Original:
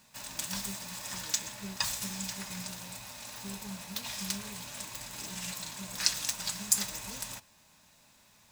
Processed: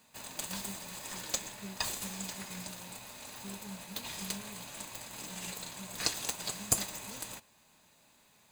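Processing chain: high-pass 180 Hz 6 dB/octave; band-stop 5.5 kHz, Q 5.5; in parallel at -9.5 dB: sample-and-hold 24×; on the sum: trim -2.5 dB

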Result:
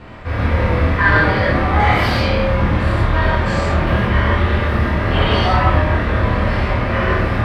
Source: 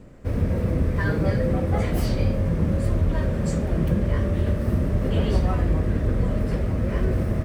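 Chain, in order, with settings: reverse; upward compressor, threshold -24 dBFS; reverse; treble shelf 5.2 kHz -9.5 dB; vibrato 12 Hz 5.5 cents; high-order bell 1.9 kHz +14.5 dB 3 oct; on a send: flutter echo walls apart 4.5 m, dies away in 0.27 s; on the sum: gated-style reverb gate 200 ms flat, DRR -7.5 dB; trim -3.5 dB

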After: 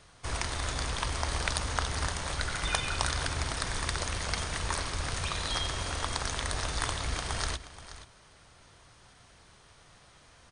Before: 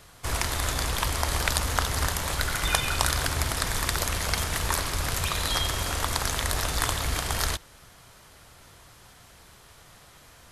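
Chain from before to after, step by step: brick-wall FIR low-pass 9.8 kHz; band-stop 7.5 kHz, Q 8.9; on a send: delay 478 ms -14.5 dB; on the sum: trim -5 dB

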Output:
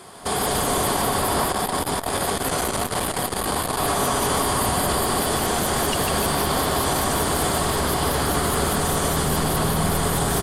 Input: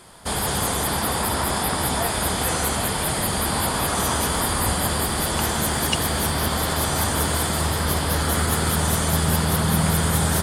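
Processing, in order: high-pass 90 Hz 12 dB/octave; small resonant body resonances 410/720/1100 Hz, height 9 dB, ringing for 45 ms; peak limiter -16.5 dBFS, peak gain reduction 10.5 dB; frequency-shifting echo 148 ms, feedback 51%, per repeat -140 Hz, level -5 dB; 1.52–3.79 s: transformer saturation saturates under 450 Hz; trim +2.5 dB

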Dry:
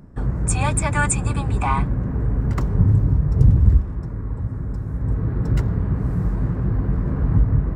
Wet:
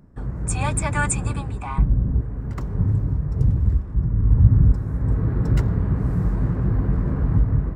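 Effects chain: 1.78–2.21 s: tilt EQ -3.5 dB/octave; level rider gain up to 9 dB; 3.94–4.72 s: tone controls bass +12 dB, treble -15 dB; trim -6.5 dB

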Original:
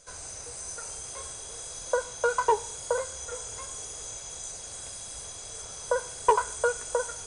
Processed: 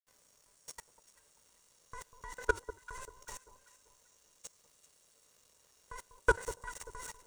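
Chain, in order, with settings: crossover distortion -41.5 dBFS; ring modulator 510 Hz; level held to a coarse grid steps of 23 dB; on a send: echo whose repeats swap between lows and highs 195 ms, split 1.1 kHz, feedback 55%, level -12 dB; on the sum: trim +1 dB

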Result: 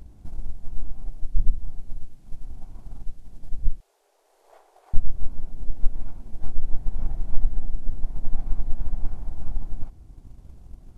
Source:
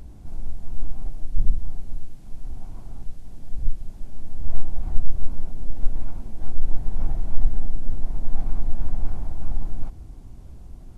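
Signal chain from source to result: 3.80–4.94 s: elliptic high-pass 420 Hz, stop band 50 dB; transient shaper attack +6 dB, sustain -2 dB; trim -5 dB

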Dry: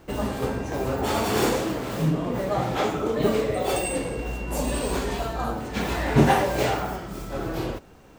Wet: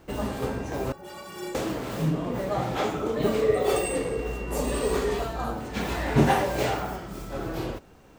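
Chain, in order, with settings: 0.92–1.55 s: inharmonic resonator 170 Hz, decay 0.32 s, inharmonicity 0.03; 3.42–5.25 s: small resonant body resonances 430/1200/1900 Hz, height 10 dB; trim -2.5 dB

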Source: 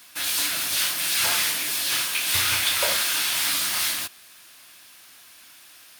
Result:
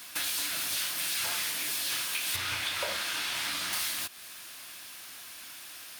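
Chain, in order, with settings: 2.36–3.73 s: low-pass 3.6 kHz 6 dB/octave; compression 4:1, threshold -35 dBFS, peak gain reduction 13.5 dB; trim +3.5 dB

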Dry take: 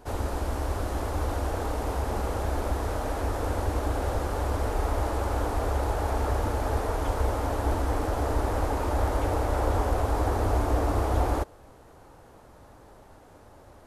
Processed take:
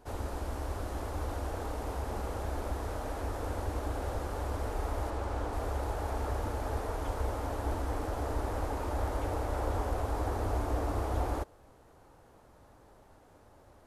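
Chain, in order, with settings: 5.10–5.53 s: treble shelf 10 kHz -11.5 dB; trim -7 dB

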